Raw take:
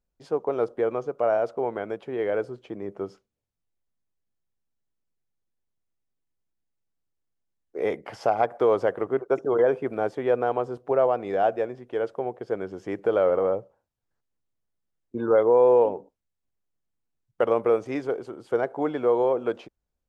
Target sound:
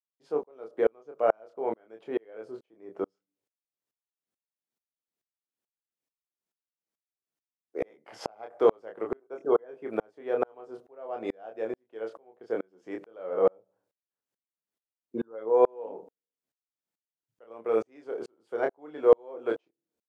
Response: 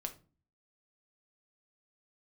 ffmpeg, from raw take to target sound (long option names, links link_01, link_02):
-filter_complex "[0:a]highpass=250,asplit=2[link_01][link_02];[link_02]adelay=27,volume=-5.5dB[link_03];[link_01][link_03]amix=inputs=2:normalize=0,asplit=2[link_04][link_05];[1:a]atrim=start_sample=2205,lowpass=frequency=1000:width=0.5412,lowpass=frequency=1000:width=1.3066[link_06];[link_05][link_06]afir=irnorm=-1:irlink=0,volume=-15dB[link_07];[link_04][link_07]amix=inputs=2:normalize=0,aeval=exprs='val(0)*pow(10,-40*if(lt(mod(-2.3*n/s,1),2*abs(-2.3)/1000),1-mod(-2.3*n/s,1)/(2*abs(-2.3)/1000),(mod(-2.3*n/s,1)-2*abs(-2.3)/1000)/(1-2*abs(-2.3)/1000))/20)':channel_layout=same,volume=3.5dB"